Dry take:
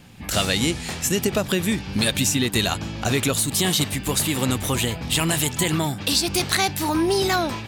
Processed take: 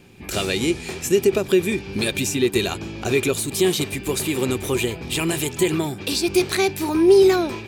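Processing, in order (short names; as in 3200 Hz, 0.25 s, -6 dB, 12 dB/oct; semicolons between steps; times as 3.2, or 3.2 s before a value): small resonant body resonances 380/2400 Hz, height 15 dB, ringing for 45 ms; gain -4 dB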